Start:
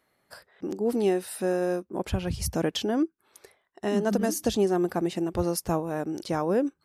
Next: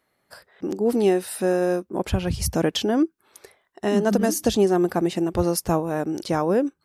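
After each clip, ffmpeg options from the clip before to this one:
-af "dynaudnorm=f=120:g=7:m=1.78"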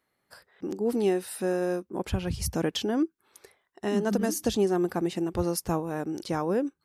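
-af "equalizer=f=630:t=o:w=0.34:g=-4,volume=0.531"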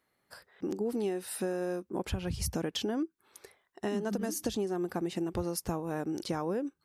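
-af "acompressor=threshold=0.0355:ratio=6"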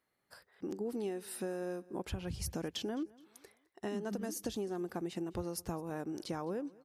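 -af "aecho=1:1:211|422|633:0.0708|0.0269|0.0102,volume=0.531"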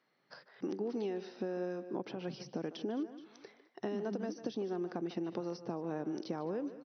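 -filter_complex "[0:a]acrossover=split=210|810[s0][s1][s2];[s0]acompressor=threshold=0.00158:ratio=4[s3];[s1]acompressor=threshold=0.00794:ratio=4[s4];[s2]acompressor=threshold=0.00141:ratio=4[s5];[s3][s4][s5]amix=inputs=3:normalize=0,asplit=2[s6][s7];[s7]adelay=150,highpass=300,lowpass=3400,asoftclip=type=hard:threshold=0.0126,volume=0.251[s8];[s6][s8]amix=inputs=2:normalize=0,afftfilt=real='re*between(b*sr/4096,120,6100)':imag='im*between(b*sr/4096,120,6100)':win_size=4096:overlap=0.75,volume=2"

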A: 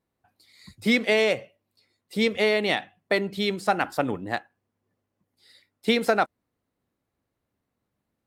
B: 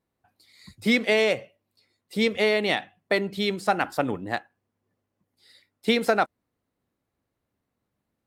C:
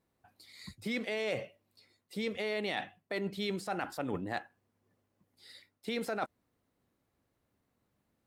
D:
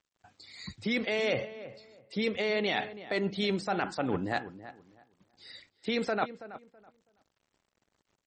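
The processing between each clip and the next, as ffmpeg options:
-af anull
-af "alimiter=limit=0.133:level=0:latency=1:release=74,areverse,acompressor=threshold=0.02:ratio=6,areverse,volume=1.19"
-filter_complex "[0:a]acrusher=bits=11:mix=0:aa=0.000001,asplit=2[s0][s1];[s1]adelay=327,lowpass=f=1900:p=1,volume=0.2,asplit=2[s2][s3];[s3]adelay=327,lowpass=f=1900:p=1,volume=0.23,asplit=2[s4][s5];[s5]adelay=327,lowpass=f=1900:p=1,volume=0.23[s6];[s0][s2][s4][s6]amix=inputs=4:normalize=0,volume=1.88" -ar 48000 -c:a libmp3lame -b:a 32k

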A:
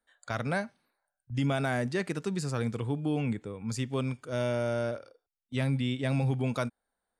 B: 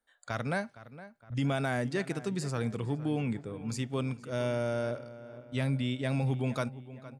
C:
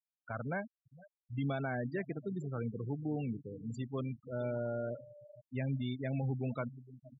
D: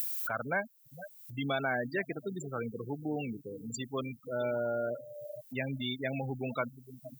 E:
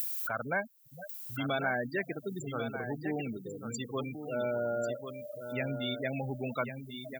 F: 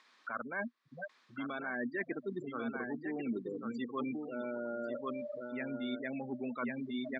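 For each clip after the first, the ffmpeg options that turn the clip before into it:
-filter_complex "[0:a]asplit=2[s0][s1];[s1]adelay=463,lowpass=f=2600:p=1,volume=0.168,asplit=2[s2][s3];[s3]adelay=463,lowpass=f=2600:p=1,volume=0.52,asplit=2[s4][s5];[s5]adelay=463,lowpass=f=2600:p=1,volume=0.52,asplit=2[s6][s7];[s7]adelay=463,lowpass=f=2600:p=1,volume=0.52,asplit=2[s8][s9];[s9]adelay=463,lowpass=f=2600:p=1,volume=0.52[s10];[s0][s2][s4][s6][s8][s10]amix=inputs=6:normalize=0,volume=0.841"
-af "afftfilt=real='re*gte(hypot(re,im),0.0316)':imag='im*gte(hypot(re,im),0.0316)':win_size=1024:overlap=0.75,volume=0.562"
-af "acompressor=mode=upward:threshold=0.0112:ratio=2.5,aemphasis=mode=production:type=riaa,volume=2.24"
-af "aecho=1:1:1094:0.376"
-af "areverse,acompressor=threshold=0.00794:ratio=10,areverse,highpass=230,equalizer=f=240:t=q:w=4:g=10,equalizer=f=350:t=q:w=4:g=6,equalizer=f=710:t=q:w=4:g=-4,equalizer=f=1100:t=q:w=4:g=10,equalizer=f=1800:t=q:w=4:g=6,equalizer=f=2900:t=q:w=4:g=-7,lowpass=f=3700:w=0.5412,lowpass=f=3700:w=1.3066,volume=1.68"

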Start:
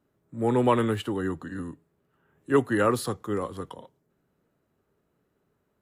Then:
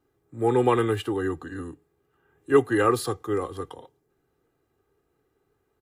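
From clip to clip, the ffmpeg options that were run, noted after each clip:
-af "aecho=1:1:2.5:0.66"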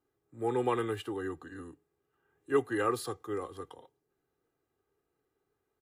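-af "lowshelf=f=220:g=-5,volume=0.398"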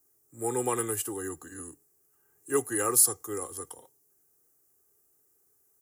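-af "aexciter=amount=15.3:drive=4.4:freq=5600"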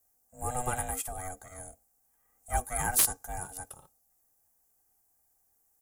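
-af "aeval=exprs='0.473*(cos(1*acos(clip(val(0)/0.473,-1,1)))-cos(1*PI/2))+0.015*(cos(4*acos(clip(val(0)/0.473,-1,1)))-cos(4*PI/2))':c=same,aeval=exprs='val(0)*sin(2*PI*370*n/s)':c=same,aeval=exprs='(mod(4.22*val(0)+1,2)-1)/4.22':c=same"

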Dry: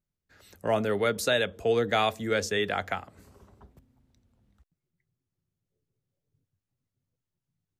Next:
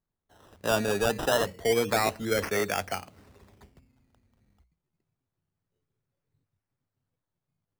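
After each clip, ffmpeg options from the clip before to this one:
-af "bandreject=f=60:t=h:w=6,bandreject=f=120:t=h:w=6,bandreject=f=180:t=h:w=6,acrusher=samples=16:mix=1:aa=0.000001:lfo=1:lforange=9.6:lforate=0.28"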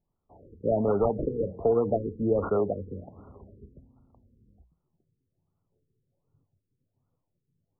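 -af "acompressor=threshold=0.0501:ratio=4,afftfilt=real='re*lt(b*sr/1024,480*pow(1500/480,0.5+0.5*sin(2*PI*1.3*pts/sr)))':imag='im*lt(b*sr/1024,480*pow(1500/480,0.5+0.5*sin(2*PI*1.3*pts/sr)))':win_size=1024:overlap=0.75,volume=2.11"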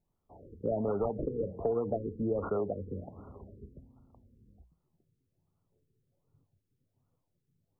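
-af "acompressor=threshold=0.0224:ratio=2"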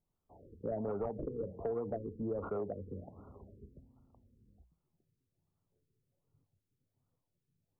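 -af "asoftclip=type=tanh:threshold=0.1,volume=0.562"

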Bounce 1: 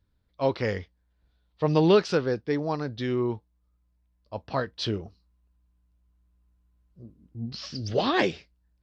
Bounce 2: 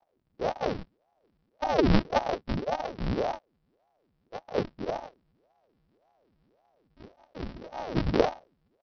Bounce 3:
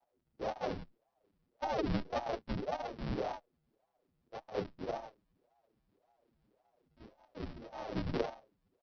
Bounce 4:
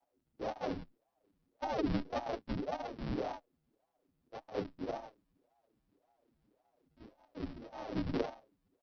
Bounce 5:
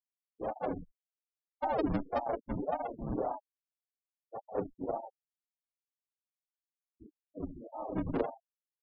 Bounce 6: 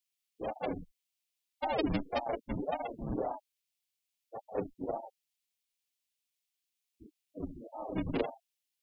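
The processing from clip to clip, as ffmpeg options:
-af "aresample=11025,acrusher=samples=35:mix=1:aa=0.000001,aresample=44100,aeval=exprs='val(0)*sin(2*PI*430*n/s+430*0.8/1.8*sin(2*PI*1.8*n/s))':c=same"
-filter_complex "[0:a]acompressor=threshold=0.0562:ratio=4,asplit=2[s0][s1];[s1]adelay=7.7,afreqshift=-1.5[s2];[s0][s2]amix=inputs=2:normalize=1,volume=0.708"
-af "equalizer=f=280:t=o:w=0.33:g=7.5,volume=0.841"
-filter_complex "[0:a]afftfilt=real='re*gte(hypot(re,im),0.00891)':imag='im*gte(hypot(re,im),0.00891)':win_size=1024:overlap=0.75,acrossover=split=540|1400[s0][s1][s2];[s1]dynaudnorm=f=140:g=9:m=1.88[s3];[s0][s3][s2]amix=inputs=3:normalize=0,volume=1.12"
-af "highshelf=f=1900:t=q:w=1.5:g=9.5"

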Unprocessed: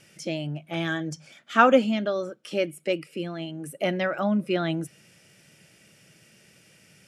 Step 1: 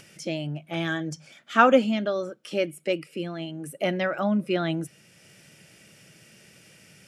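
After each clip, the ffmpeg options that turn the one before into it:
-af "acompressor=mode=upward:threshold=0.00447:ratio=2.5"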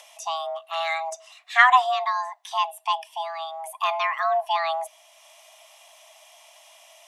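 -af "afreqshift=490,lowshelf=f=210:t=q:w=3:g=12.5,volume=1.26"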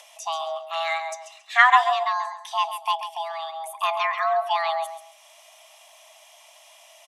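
-af "aecho=1:1:136|272|408:0.316|0.0696|0.0153"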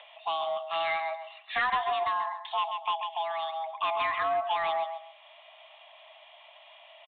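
-af "acompressor=threshold=0.0631:ratio=2.5,aresample=8000,asoftclip=type=tanh:threshold=0.0841,aresample=44100"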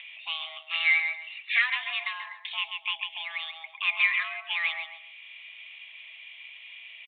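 -af "highpass=f=2300:t=q:w=5.7"

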